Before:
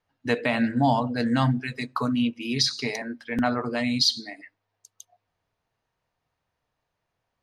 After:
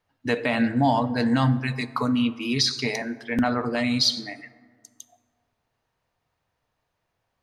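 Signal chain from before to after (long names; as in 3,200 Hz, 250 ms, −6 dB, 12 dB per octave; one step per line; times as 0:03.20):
in parallel at +2 dB: brickwall limiter −16 dBFS, peak gain reduction 7 dB
on the sum: dense smooth reverb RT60 1.8 s, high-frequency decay 0.4×, DRR 14 dB
level −4.5 dB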